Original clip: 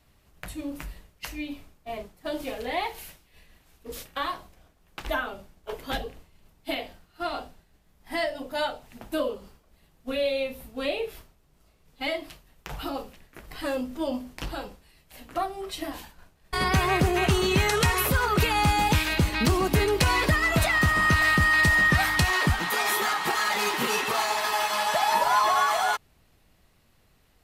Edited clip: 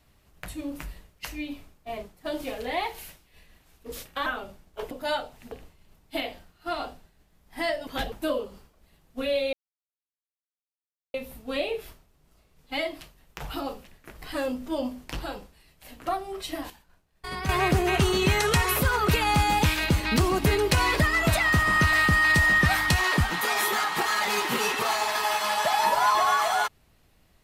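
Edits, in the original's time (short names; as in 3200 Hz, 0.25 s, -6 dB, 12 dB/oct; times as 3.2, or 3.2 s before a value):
4.26–5.16 cut
5.81–6.06 swap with 8.41–9.02
10.43 insert silence 1.61 s
15.99–16.78 gain -9 dB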